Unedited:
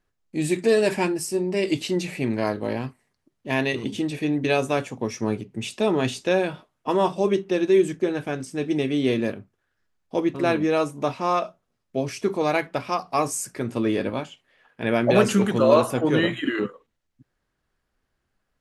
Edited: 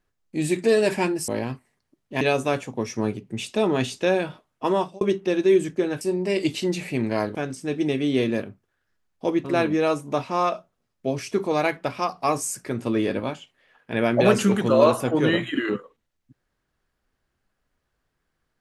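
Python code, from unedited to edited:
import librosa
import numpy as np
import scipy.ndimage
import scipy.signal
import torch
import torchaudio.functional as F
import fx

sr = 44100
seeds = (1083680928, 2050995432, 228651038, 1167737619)

y = fx.edit(x, sr, fx.move(start_s=1.28, length_s=1.34, to_s=8.25),
    fx.cut(start_s=3.55, length_s=0.9),
    fx.fade_out_span(start_s=6.96, length_s=0.29), tone=tone)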